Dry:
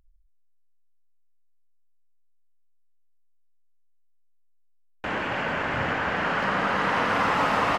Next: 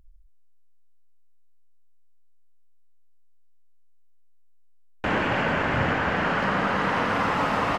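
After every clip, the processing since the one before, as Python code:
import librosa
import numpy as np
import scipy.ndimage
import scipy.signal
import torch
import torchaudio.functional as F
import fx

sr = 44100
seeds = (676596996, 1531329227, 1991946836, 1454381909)

y = fx.low_shelf(x, sr, hz=380.0, db=5.5)
y = fx.rider(y, sr, range_db=10, speed_s=0.5)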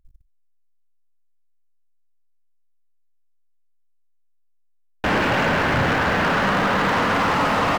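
y = fx.leveller(x, sr, passes=3)
y = F.gain(torch.from_numpy(y), -3.5).numpy()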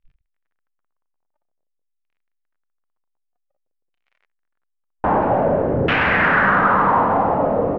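y = fx.dmg_crackle(x, sr, seeds[0], per_s=28.0, level_db=-44.0)
y = fx.noise_reduce_blind(y, sr, reduce_db=13)
y = fx.filter_lfo_lowpass(y, sr, shape='saw_down', hz=0.51, low_hz=430.0, high_hz=2800.0, q=2.7)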